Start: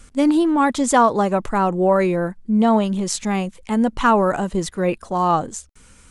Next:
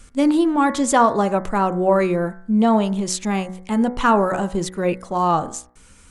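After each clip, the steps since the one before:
hum removal 61.62 Hz, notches 36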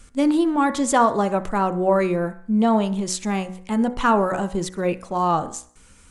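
feedback echo with a high-pass in the loop 64 ms, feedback 50%, level −22.5 dB
level −2 dB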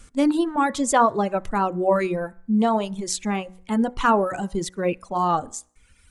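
reverb reduction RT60 1.4 s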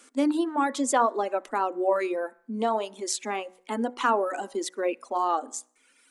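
elliptic high-pass filter 250 Hz, stop band 40 dB
in parallel at +1 dB: downward compressor, threshold −27 dBFS, peak gain reduction 14 dB
on the sum: level −6.5 dB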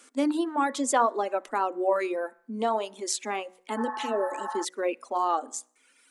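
healed spectral selection 0:03.79–0:04.61, 680–1,900 Hz before
low-shelf EQ 260 Hz −4 dB

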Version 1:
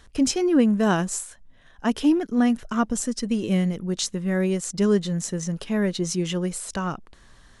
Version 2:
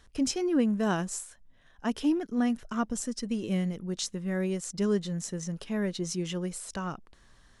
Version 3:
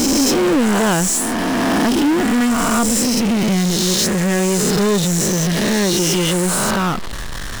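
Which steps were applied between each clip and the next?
parametric band 5,400 Hz +2 dB 0.2 octaves; level −7 dB
peak hold with a rise ahead of every peak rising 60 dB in 2.09 s; power curve on the samples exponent 0.35

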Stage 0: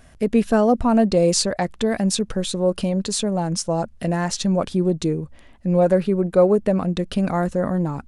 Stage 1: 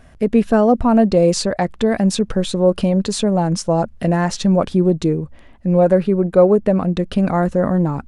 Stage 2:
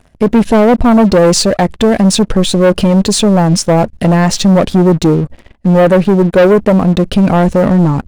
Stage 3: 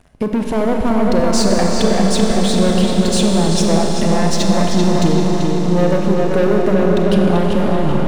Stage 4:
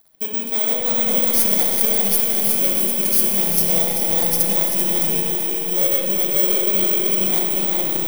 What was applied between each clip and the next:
high-shelf EQ 3,700 Hz −9 dB; in parallel at +3 dB: speech leveller 2 s; on the sum: level −3.5 dB
parametric band 1,300 Hz −5.5 dB 1 octave; leveller curve on the samples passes 3
downward compressor, threshold −13 dBFS, peak gain reduction 8 dB; feedback echo with a low-pass in the loop 387 ms, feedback 50%, low-pass 4,500 Hz, level −3.5 dB; on a send at −1 dB: convolution reverb RT60 5.6 s, pre-delay 30 ms; on the sum: level −3.5 dB
samples in bit-reversed order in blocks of 16 samples; RIAA equalisation recording; spring reverb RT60 1.4 s, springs 30/36/56 ms, chirp 40 ms, DRR 0.5 dB; level −11.5 dB

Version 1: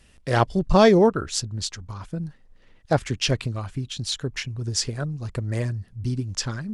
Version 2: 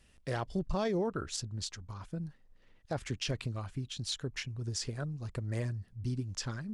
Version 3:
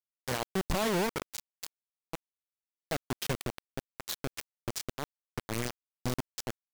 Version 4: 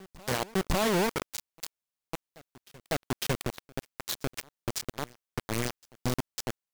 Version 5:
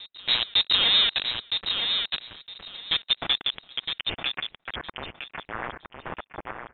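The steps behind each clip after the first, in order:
brickwall limiter −16.5 dBFS, peak gain reduction 11.5 dB; level −8.5 dB
bit reduction 5 bits
backwards echo 552 ms −23 dB; level +3 dB
high-pass filter sweep 120 Hz → 2,900 Hz, 0:02.49–0:04.97; voice inversion scrambler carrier 3,900 Hz; repeating echo 963 ms, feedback 18%, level −6 dB; level +4 dB

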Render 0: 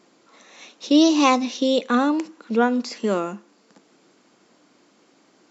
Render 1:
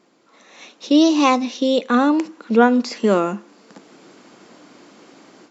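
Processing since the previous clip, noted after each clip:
high-shelf EQ 4,800 Hz −5 dB
automatic gain control gain up to 13 dB
level −1 dB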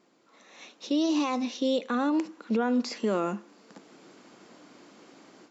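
brickwall limiter −12 dBFS, peak gain reduction 10.5 dB
level −6.5 dB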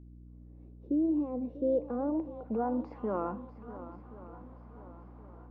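feedback echo with a long and a short gap by turns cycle 1,074 ms, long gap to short 1.5 to 1, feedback 39%, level −14.5 dB
low-pass filter sweep 310 Hz → 1,000 Hz, 0:00.43–0:03.15
mains hum 60 Hz, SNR 16 dB
level −8 dB

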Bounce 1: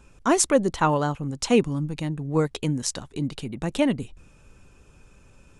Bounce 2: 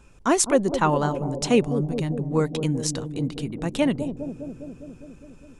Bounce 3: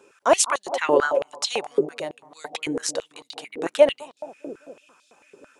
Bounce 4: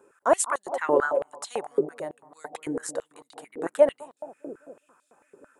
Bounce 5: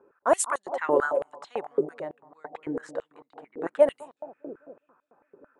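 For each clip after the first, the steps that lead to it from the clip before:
bucket-brigade delay 203 ms, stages 1,024, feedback 72%, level −8.5 dB
high-pass on a step sequencer 9 Hz 410–3,900 Hz
flat-topped bell 3,800 Hz −13.5 dB; level −3 dB
low-pass that shuts in the quiet parts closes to 1,300 Hz, open at −19.5 dBFS; level −1 dB

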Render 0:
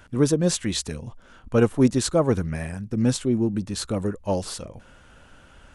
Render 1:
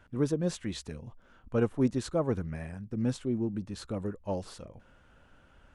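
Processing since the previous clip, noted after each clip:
high-shelf EQ 4,100 Hz −10.5 dB
level −8.5 dB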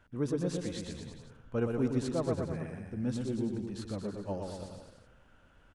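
bouncing-ball delay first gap 120 ms, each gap 0.9×, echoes 5
level −4.5 dB

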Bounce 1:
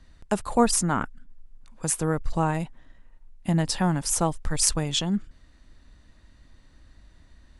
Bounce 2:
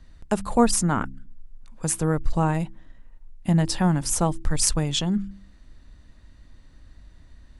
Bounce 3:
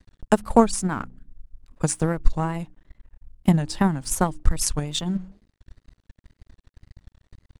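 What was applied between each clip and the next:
low-shelf EQ 270 Hz +5 dB; hum removal 65.57 Hz, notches 5
tape wow and flutter 120 cents; dead-zone distortion −47 dBFS; transient designer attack +11 dB, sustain −2 dB; level −4 dB

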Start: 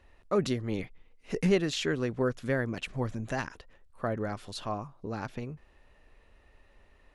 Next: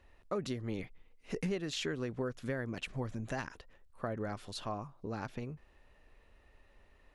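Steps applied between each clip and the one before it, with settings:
downward compressor 4 to 1, threshold −30 dBFS, peak gain reduction 9 dB
level −3 dB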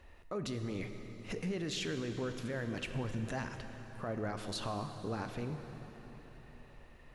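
brickwall limiter −34.5 dBFS, peak gain reduction 10.5 dB
dense smooth reverb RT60 4.5 s, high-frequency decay 0.8×, pre-delay 0 ms, DRR 6.5 dB
level +5 dB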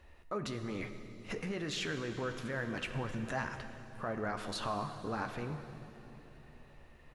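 dynamic equaliser 1,300 Hz, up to +7 dB, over −54 dBFS, Q 0.79
double-tracking delay 14 ms −11 dB
level −1.5 dB

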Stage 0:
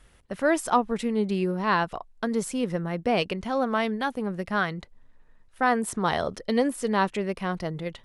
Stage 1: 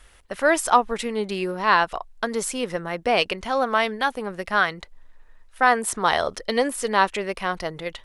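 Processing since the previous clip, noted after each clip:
parametric band 160 Hz −13.5 dB 2.5 octaves
level +7.5 dB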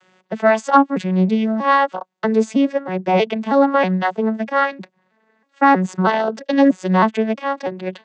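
vocoder with an arpeggio as carrier minor triad, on F#3, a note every 319 ms
level +7 dB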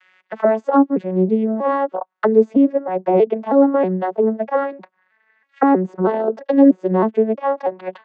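envelope filter 370–2,100 Hz, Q 2.1, down, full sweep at −15 dBFS
level +7 dB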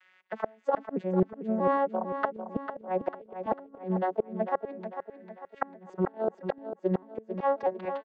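gate with flip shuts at −8 dBFS, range −31 dB
on a send: repeating echo 448 ms, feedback 44%, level −9 dB
on the sum: level −7 dB

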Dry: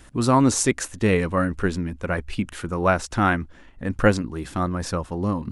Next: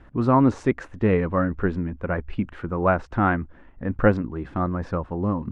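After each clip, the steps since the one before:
low-pass filter 1,600 Hz 12 dB per octave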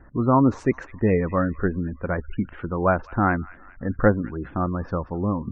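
delay with a high-pass on its return 203 ms, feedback 56%, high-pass 2,000 Hz, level −13.5 dB
gate on every frequency bin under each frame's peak −30 dB strong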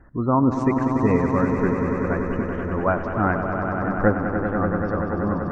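echo that builds up and dies away 96 ms, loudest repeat 5, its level −9 dB
level −1.5 dB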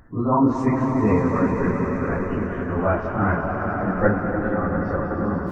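random phases in long frames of 100 ms

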